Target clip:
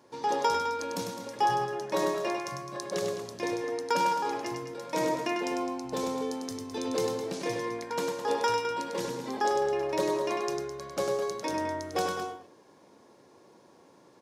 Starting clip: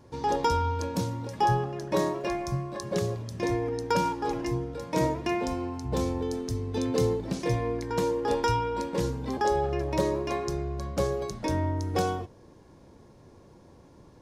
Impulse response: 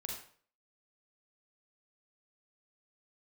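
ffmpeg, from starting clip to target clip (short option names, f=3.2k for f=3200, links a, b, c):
-af "highpass=180,lowshelf=f=270:g=-11,aecho=1:1:99.13|209.9:0.562|0.316"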